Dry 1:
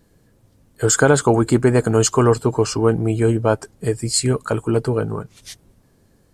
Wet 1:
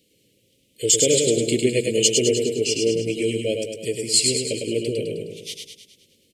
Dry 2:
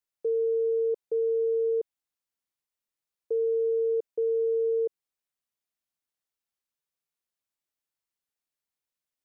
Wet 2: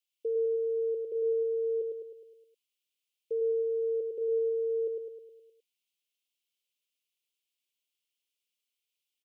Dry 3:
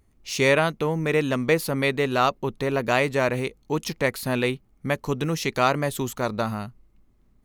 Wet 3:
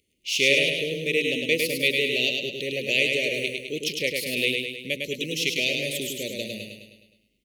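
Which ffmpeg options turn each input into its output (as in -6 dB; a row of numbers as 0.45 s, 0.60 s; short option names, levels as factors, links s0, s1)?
-af "highpass=f=620:p=1,equalizer=f=3000:t=o:w=0.65:g=10,aeval=exprs='0.841*(cos(1*acos(clip(val(0)/0.841,-1,1)))-cos(1*PI/2))+0.00531*(cos(5*acos(clip(val(0)/0.841,-1,1)))-cos(5*PI/2))':c=same,asuperstop=centerf=1100:order=12:qfactor=0.7,aecho=1:1:104|208|312|416|520|624|728:0.631|0.341|0.184|0.0994|0.0537|0.029|0.0156"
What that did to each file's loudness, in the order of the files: -2.5 LU, -3.5 LU, 0.0 LU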